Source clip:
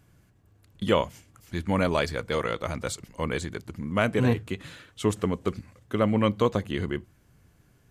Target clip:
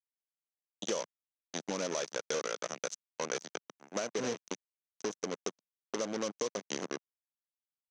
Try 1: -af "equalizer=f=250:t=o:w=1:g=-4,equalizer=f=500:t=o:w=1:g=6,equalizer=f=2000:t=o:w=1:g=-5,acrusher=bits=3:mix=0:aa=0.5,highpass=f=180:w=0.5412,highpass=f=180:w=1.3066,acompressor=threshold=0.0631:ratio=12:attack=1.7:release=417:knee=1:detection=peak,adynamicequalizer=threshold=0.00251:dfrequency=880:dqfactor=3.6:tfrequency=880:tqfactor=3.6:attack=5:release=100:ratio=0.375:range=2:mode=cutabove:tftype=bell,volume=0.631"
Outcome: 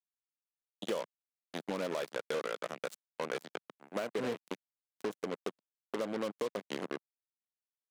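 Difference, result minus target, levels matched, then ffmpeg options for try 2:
8 kHz band -13.0 dB
-af "equalizer=f=250:t=o:w=1:g=-4,equalizer=f=500:t=o:w=1:g=6,equalizer=f=2000:t=o:w=1:g=-5,acrusher=bits=3:mix=0:aa=0.5,highpass=f=180:w=0.5412,highpass=f=180:w=1.3066,acompressor=threshold=0.0631:ratio=12:attack=1.7:release=417:knee=1:detection=peak,adynamicequalizer=threshold=0.00251:dfrequency=880:dqfactor=3.6:tfrequency=880:tqfactor=3.6:attack=5:release=100:ratio=0.375:range=2:mode=cutabove:tftype=bell,lowpass=f=6100:t=q:w=9.9,volume=0.631"

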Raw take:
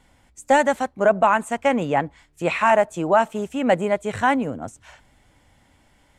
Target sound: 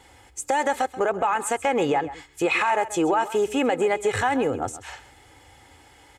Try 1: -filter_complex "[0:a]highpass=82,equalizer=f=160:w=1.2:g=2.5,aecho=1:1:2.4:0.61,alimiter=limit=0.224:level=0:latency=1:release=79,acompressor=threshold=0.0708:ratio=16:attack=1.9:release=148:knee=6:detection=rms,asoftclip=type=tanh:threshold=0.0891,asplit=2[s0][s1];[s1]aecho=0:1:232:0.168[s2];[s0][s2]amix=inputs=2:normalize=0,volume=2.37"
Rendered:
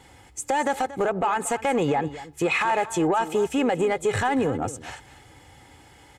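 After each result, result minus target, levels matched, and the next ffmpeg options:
echo 99 ms late; saturation: distortion +14 dB; 125 Hz band +6.0 dB
-filter_complex "[0:a]highpass=82,equalizer=f=160:w=1.2:g=2.5,aecho=1:1:2.4:0.61,alimiter=limit=0.224:level=0:latency=1:release=79,acompressor=threshold=0.0708:ratio=16:attack=1.9:release=148:knee=6:detection=rms,asoftclip=type=tanh:threshold=0.0891,asplit=2[s0][s1];[s1]aecho=0:1:133:0.168[s2];[s0][s2]amix=inputs=2:normalize=0,volume=2.37"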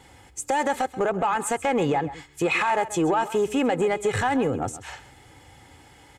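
saturation: distortion +14 dB; 125 Hz band +6.0 dB
-filter_complex "[0:a]highpass=82,equalizer=f=160:w=1.2:g=2.5,aecho=1:1:2.4:0.61,alimiter=limit=0.224:level=0:latency=1:release=79,acompressor=threshold=0.0708:ratio=16:attack=1.9:release=148:knee=6:detection=rms,asoftclip=type=tanh:threshold=0.224,asplit=2[s0][s1];[s1]aecho=0:1:133:0.168[s2];[s0][s2]amix=inputs=2:normalize=0,volume=2.37"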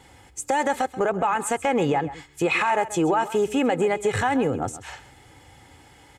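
125 Hz band +5.5 dB
-filter_complex "[0:a]highpass=82,equalizer=f=160:w=1.2:g=-6.5,aecho=1:1:2.4:0.61,alimiter=limit=0.224:level=0:latency=1:release=79,acompressor=threshold=0.0708:ratio=16:attack=1.9:release=148:knee=6:detection=rms,asoftclip=type=tanh:threshold=0.224,asplit=2[s0][s1];[s1]aecho=0:1:133:0.168[s2];[s0][s2]amix=inputs=2:normalize=0,volume=2.37"

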